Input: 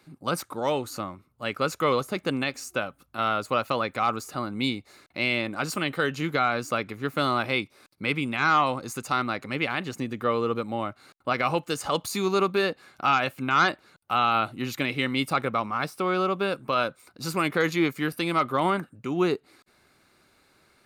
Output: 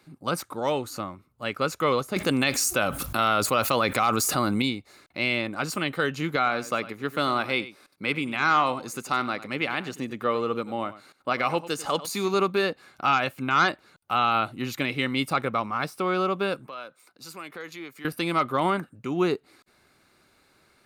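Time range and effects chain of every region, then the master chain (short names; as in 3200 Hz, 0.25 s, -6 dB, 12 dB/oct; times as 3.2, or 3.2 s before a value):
2.16–4.62 high shelf 5200 Hz +9.5 dB + fast leveller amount 70%
6.36–12.34 bell 73 Hz -11.5 dB 1.3 oct + echo 96 ms -15.5 dB
16.66–18.05 HPF 390 Hz 6 dB/oct + compressor 2:1, threshold -45 dBFS + three-band expander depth 40%
whole clip: dry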